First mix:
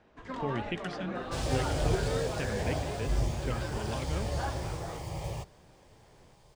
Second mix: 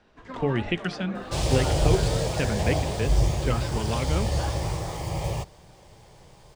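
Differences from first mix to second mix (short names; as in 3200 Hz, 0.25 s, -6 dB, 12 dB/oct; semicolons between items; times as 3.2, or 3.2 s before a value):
speech +9.0 dB; second sound +8.0 dB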